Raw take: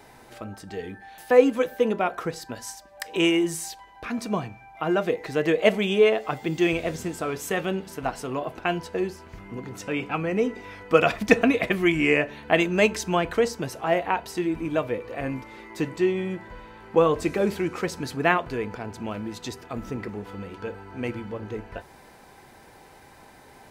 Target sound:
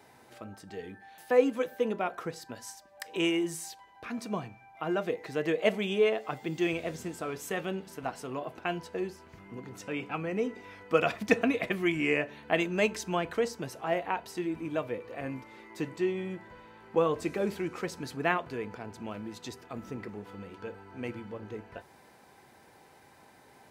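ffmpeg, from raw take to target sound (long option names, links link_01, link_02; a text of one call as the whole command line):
ffmpeg -i in.wav -af "highpass=88,volume=-7dB" out.wav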